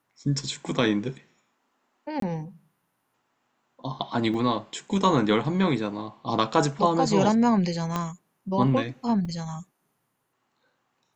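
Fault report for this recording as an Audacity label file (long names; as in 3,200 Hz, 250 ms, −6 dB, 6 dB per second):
2.200000	2.220000	drop-out 23 ms
4.340000	4.340000	drop-out 3.9 ms
7.960000	7.960000	click −13 dBFS
9.250000	9.250000	drop-out 3.6 ms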